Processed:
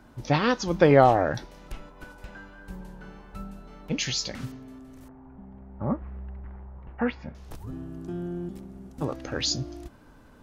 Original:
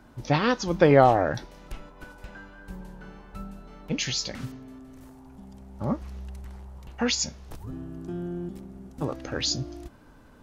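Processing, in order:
0:05.08–0:07.35: low-pass filter 2,000 Hz 24 dB per octave

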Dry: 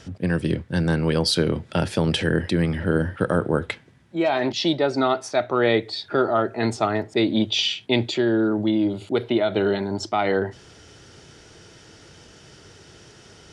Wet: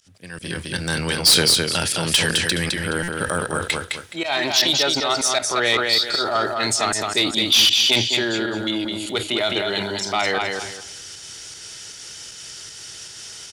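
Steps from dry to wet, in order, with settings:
first-order pre-emphasis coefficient 0.97
fake sidechain pumping 156 BPM, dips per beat 1, −23 dB, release 119 ms
low-shelf EQ 140 Hz +9.5 dB
on a send: repeating echo 211 ms, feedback 23%, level −5.5 dB
on the sum: soft clipping −27 dBFS, distortion −11 dB
transient designer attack 0 dB, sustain +6 dB
automatic gain control gain up to 15 dB
buffer that repeats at 0:03.03, samples 256, times 8
level +3 dB

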